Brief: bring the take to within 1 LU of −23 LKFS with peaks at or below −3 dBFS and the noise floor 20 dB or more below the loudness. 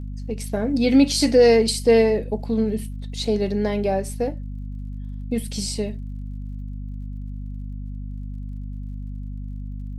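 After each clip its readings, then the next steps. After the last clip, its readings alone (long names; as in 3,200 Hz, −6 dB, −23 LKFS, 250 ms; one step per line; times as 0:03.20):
crackle rate 43 per second; mains hum 50 Hz; hum harmonics up to 250 Hz; level of the hum −29 dBFS; integrated loudness −21.0 LKFS; sample peak −5.0 dBFS; target loudness −23.0 LKFS
→ click removal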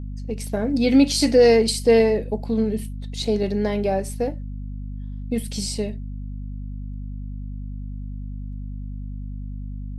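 crackle rate 0.30 per second; mains hum 50 Hz; hum harmonics up to 250 Hz; level of the hum −29 dBFS
→ hum removal 50 Hz, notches 5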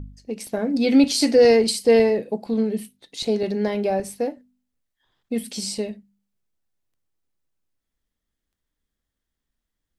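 mains hum none found; integrated loudness −21.0 LKFS; sample peak −6.0 dBFS; target loudness −23.0 LKFS
→ level −2 dB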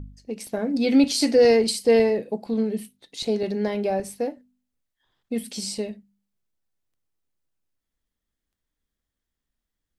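integrated loudness −23.0 LKFS; sample peak −8.0 dBFS; background noise floor −85 dBFS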